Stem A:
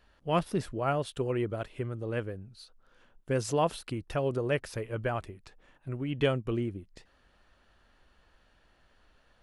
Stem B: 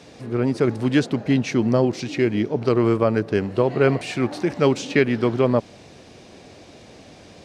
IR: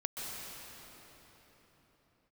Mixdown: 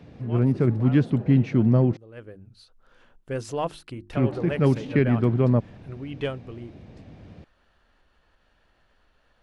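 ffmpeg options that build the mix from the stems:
-filter_complex "[0:a]bandreject=frequency=50:width_type=h:width=6,bandreject=frequency=100:width_type=h:width=6,bandreject=frequency=150:width_type=h:width=6,bandreject=frequency=200:width_type=h:width=6,bandreject=frequency=250:width_type=h:width=6,bandreject=frequency=300:width_type=h:width=6,bandreject=frequency=350:width_type=h:width=6,acompressor=mode=upward:threshold=-46dB:ratio=2.5,aeval=exprs='0.2*(cos(1*acos(clip(val(0)/0.2,-1,1)))-cos(1*PI/2))+0.00355*(cos(6*acos(clip(val(0)/0.2,-1,1)))-cos(6*PI/2))+0.00158*(cos(7*acos(clip(val(0)/0.2,-1,1)))-cos(7*PI/2))':channel_layout=same,volume=-0.5dB,afade=type=in:start_time=2.13:duration=0.29:silence=0.266073,afade=type=out:start_time=6.19:duration=0.24:silence=0.473151[link_01];[1:a]bass=frequency=250:gain=14,treble=frequency=4000:gain=-13,volume=-7.5dB,asplit=3[link_02][link_03][link_04];[link_02]atrim=end=1.97,asetpts=PTS-STARTPTS,afade=type=out:start_time=1.966:duration=0.004:curve=hsin[link_05];[link_03]atrim=start=1.97:end=4.13,asetpts=PTS-STARTPTS,volume=0[link_06];[link_04]atrim=start=4.13,asetpts=PTS-STARTPTS,afade=type=in:duration=0.004:curve=hsin[link_07];[link_05][link_06][link_07]concat=n=3:v=0:a=1[link_08];[link_01][link_08]amix=inputs=2:normalize=0,highshelf=frequency=7500:gain=-7.5"

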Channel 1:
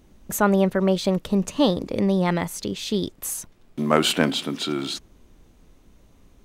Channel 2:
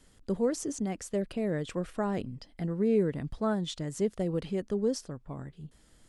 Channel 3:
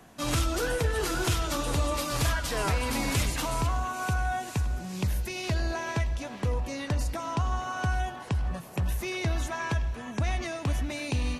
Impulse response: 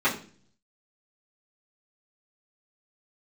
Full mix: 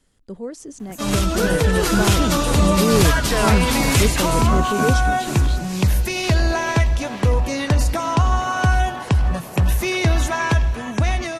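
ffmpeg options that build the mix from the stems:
-filter_complex "[0:a]acrossover=split=250[link_01][link_02];[link_02]acompressor=threshold=-46dB:ratio=2[link_03];[link_01][link_03]amix=inputs=2:normalize=0,adelay=600,volume=-7.5dB[link_04];[1:a]volume=-3.5dB[link_05];[2:a]adelay=800,volume=0dB[link_06];[link_04][link_05][link_06]amix=inputs=3:normalize=0,dynaudnorm=framelen=140:gausssize=17:maxgain=11.5dB"

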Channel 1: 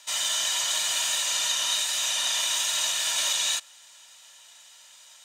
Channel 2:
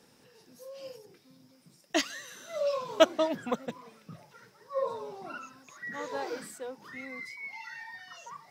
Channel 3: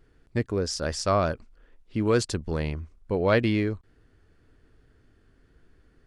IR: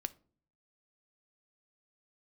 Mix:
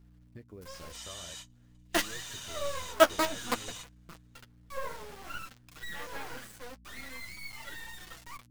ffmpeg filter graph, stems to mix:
-filter_complex "[0:a]adelay=850,volume=-14.5dB[link_01];[1:a]equalizer=frequency=1500:width_type=o:width=1.2:gain=9.5,acrusher=bits=4:dc=4:mix=0:aa=0.000001,volume=-0.5dB[link_02];[2:a]acompressor=threshold=-32dB:ratio=12,acrusher=bits=9:mix=0:aa=0.000001,volume=-10.5dB,asplit=2[link_03][link_04];[link_04]apad=whole_len=268830[link_05];[link_01][link_05]sidechaingate=range=-40dB:threshold=-57dB:ratio=16:detection=peak[link_06];[link_06][link_02][link_03]amix=inputs=3:normalize=0,aeval=exprs='val(0)+0.00251*(sin(2*PI*60*n/s)+sin(2*PI*2*60*n/s)/2+sin(2*PI*3*60*n/s)/3+sin(2*PI*4*60*n/s)/4+sin(2*PI*5*60*n/s)/5)':channel_layout=same,flanger=delay=5.7:depth=6.8:regen=-24:speed=0.5:shape=sinusoidal"

